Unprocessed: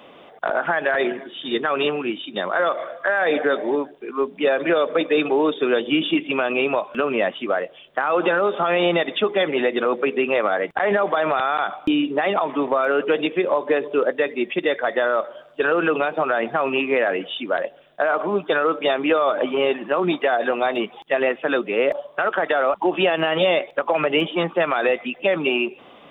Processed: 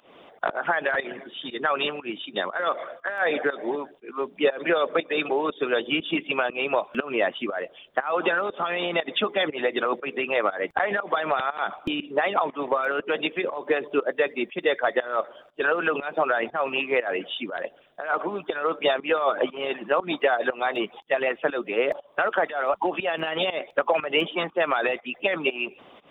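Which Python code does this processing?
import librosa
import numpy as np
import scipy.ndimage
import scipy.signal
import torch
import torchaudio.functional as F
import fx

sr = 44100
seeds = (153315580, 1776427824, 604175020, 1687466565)

y = fx.volume_shaper(x, sr, bpm=120, per_beat=1, depth_db=-15, release_ms=208.0, shape='fast start')
y = fx.hpss(y, sr, part='harmonic', gain_db=-11)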